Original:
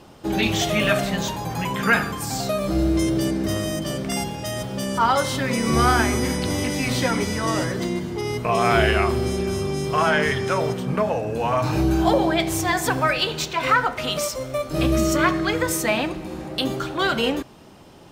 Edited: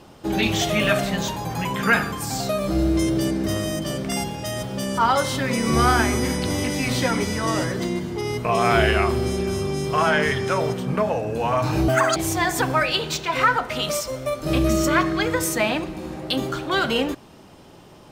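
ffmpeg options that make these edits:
-filter_complex "[0:a]asplit=3[s0][s1][s2];[s0]atrim=end=11.884[s3];[s1]atrim=start=11.88:end=12.44,asetpts=PTS-STARTPTS,asetrate=87759,aresample=44100,atrim=end_sample=12410,asetpts=PTS-STARTPTS[s4];[s2]atrim=start=12.436[s5];[s3][s4]acrossfade=d=0.004:c1=hsin:c2=hsin[s6];[s6][s5]acrossfade=d=0.004:c1=hsin:c2=hsin"

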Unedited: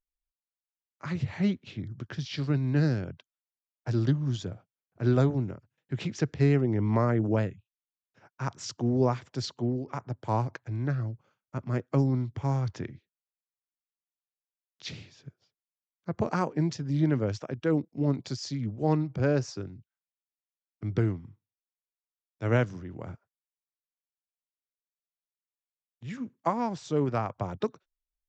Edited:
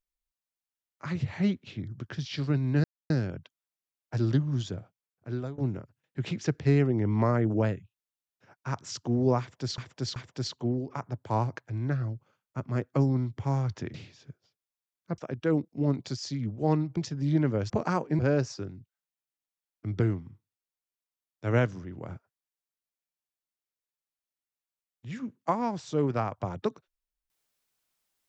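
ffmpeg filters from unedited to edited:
-filter_complex "[0:a]asplit=10[s0][s1][s2][s3][s4][s5][s6][s7][s8][s9];[s0]atrim=end=2.84,asetpts=PTS-STARTPTS,afade=t=out:st=2.836:d=0.004:c=hsin,apad=pad_dur=0.26[s10];[s1]atrim=start=2.84:end=5.32,asetpts=PTS-STARTPTS,afade=t=in:d=0.004:c=hsin,afade=t=out:st=1.69:d=0.79:silence=0.0944061[s11];[s2]atrim=start=5.32:end=9.522,asetpts=PTS-STARTPTS,afade=t=in:d=0.004:c=hsin:silence=0.0944061[s12];[s3]atrim=start=9.138:end=9.522[s13];[s4]atrim=start=9.138:end=12.922[s14];[s5]atrim=start=14.918:end=16.162[s15];[s6]atrim=start=17.378:end=19.172[s16];[s7]atrim=start=16.648:end=17.382[s17];[s8]atrim=start=16.158:end=16.652[s18];[s9]atrim=start=19.168[s19];[s10][s11][s12]concat=n=3:v=0:a=1[s20];[s20][s13]acrossfade=d=0.004:c1=hsin:c2=hsin[s21];[s21][s14]acrossfade=d=0.004:c1=hsin:c2=hsin[s22];[s22][s15]acrossfade=d=0.004:c1=hsin:c2=hsin[s23];[s23][s16]acrossfade=d=0.004:c1=hsin:c2=hsin[s24];[s24][s17]acrossfade=d=0.004:c1=hsin:c2=hsin[s25];[s25][s18]acrossfade=d=0.004:c1=hsin:c2=hsin[s26];[s26][s19]acrossfade=d=0.004:c1=hsin:c2=hsin"

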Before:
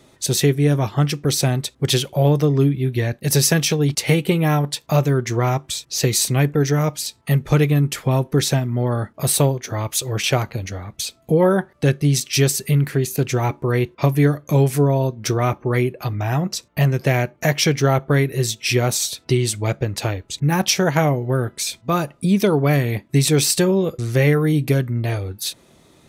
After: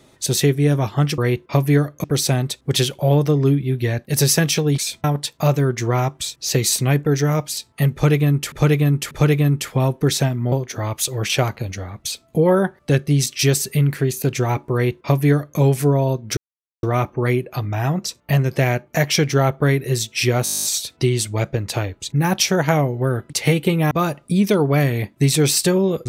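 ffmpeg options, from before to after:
-filter_complex "[0:a]asplit=21[s0][s1][s2][s3][s4][s5][s6][s7][s8][s9][s10][s11][s12][s13][s14][s15][s16][s17][s18][s19][s20];[s0]atrim=end=1.182[s21];[s1]atrim=start=13.668:end=14.532[s22];[s2]atrim=start=1.178:end=3.922[s23];[s3]atrim=start=21.578:end=21.842[s24];[s4]atrim=start=4.528:end=8.012[s25];[s5]atrim=start=7.418:end=8.012[s26];[s6]atrim=start=7.418:end=8.832[s27];[s7]atrim=start=9.458:end=15.31,asetpts=PTS-STARTPTS,afade=t=out:st=5.848:d=0.004:c=hsin,apad=pad_dur=0.46[s28];[s8]atrim=start=15.31:end=18.942,asetpts=PTS-STARTPTS,afade=t=in:d=0.004:c=hsin[s29];[s9]atrim=start=18.918:end=18.942[s30];[s10]atrim=start=18.918:end=18.942[s31];[s11]atrim=start=18.918:end=18.942[s32];[s12]atrim=start=18.918:end=18.942[s33];[s13]atrim=start=18.918:end=18.942[s34];[s14]atrim=start=18.918:end=18.942[s35];[s15]atrim=start=18.918:end=18.942[s36];[s16]atrim=start=18.918:end=18.942[s37];[s17]atrim=start=18.918:end=18.942[s38];[s18]atrim=start=18.918:end=21.582[s39];[s19]atrim=start=3.918:end=4.532[s40];[s20]atrim=start=21.838[s41];[s21][s22]acrossfade=d=0.004:c1=hsin:c2=hsin[s42];[s42][s23]acrossfade=d=0.004:c1=hsin:c2=hsin[s43];[s43][s24]acrossfade=d=0.004:c1=hsin:c2=hsin[s44];[s44][s25]acrossfade=d=0.004:c1=hsin:c2=hsin[s45];[s45][s26]acrossfade=d=0.004:c1=hsin:c2=hsin[s46];[s46][s27]acrossfade=d=0.004:c1=hsin:c2=hsin[s47];[s28][s29]concat=n=2:v=0:a=1[s48];[s47][s48]acrossfade=d=0.004:c1=hsin:c2=hsin[s49];[s49][s30]acrossfade=d=0.004:c1=hsin:c2=hsin[s50];[s50][s31]acrossfade=d=0.004:c1=hsin:c2=hsin[s51];[s51][s32]acrossfade=d=0.004:c1=hsin:c2=hsin[s52];[s52][s33]acrossfade=d=0.004:c1=hsin:c2=hsin[s53];[s53][s34]acrossfade=d=0.004:c1=hsin:c2=hsin[s54];[s54][s35]acrossfade=d=0.004:c1=hsin:c2=hsin[s55];[s55][s36]acrossfade=d=0.004:c1=hsin:c2=hsin[s56];[s56][s37]acrossfade=d=0.004:c1=hsin:c2=hsin[s57];[s57][s38]acrossfade=d=0.004:c1=hsin:c2=hsin[s58];[s58][s39]acrossfade=d=0.004:c1=hsin:c2=hsin[s59];[s59][s40]acrossfade=d=0.004:c1=hsin:c2=hsin[s60];[s60][s41]acrossfade=d=0.004:c1=hsin:c2=hsin"

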